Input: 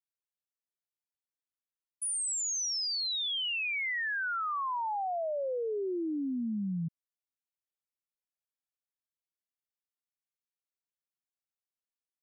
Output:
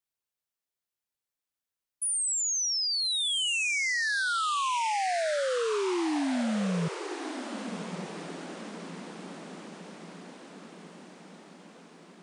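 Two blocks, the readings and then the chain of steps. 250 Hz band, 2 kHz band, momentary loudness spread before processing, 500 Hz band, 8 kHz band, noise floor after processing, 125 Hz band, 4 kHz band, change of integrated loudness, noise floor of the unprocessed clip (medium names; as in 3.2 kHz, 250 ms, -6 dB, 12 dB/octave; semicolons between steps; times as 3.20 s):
+4.5 dB, +4.5 dB, 4 LU, +4.5 dB, +4.5 dB, under -85 dBFS, +4.5 dB, +4.5 dB, +3.5 dB, under -85 dBFS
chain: echo that smears into a reverb 1223 ms, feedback 60%, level -9.5 dB; trim +4 dB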